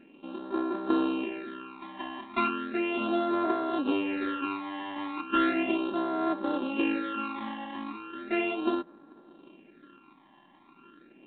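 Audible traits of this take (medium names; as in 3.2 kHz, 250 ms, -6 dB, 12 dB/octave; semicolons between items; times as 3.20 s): a buzz of ramps at a fixed pitch in blocks of 32 samples; phasing stages 12, 0.36 Hz, lowest notch 430–2700 Hz; µ-law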